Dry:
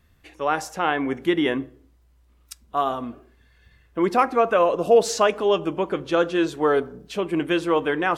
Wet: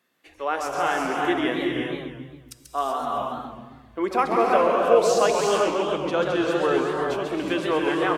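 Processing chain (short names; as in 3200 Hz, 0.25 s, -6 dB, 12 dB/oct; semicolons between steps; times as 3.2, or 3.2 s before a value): bands offset in time highs, lows 0.27 s, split 220 Hz; non-linear reverb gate 0.41 s rising, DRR 1 dB; warbling echo 0.135 s, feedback 47%, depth 217 cents, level -5.5 dB; gain -3.5 dB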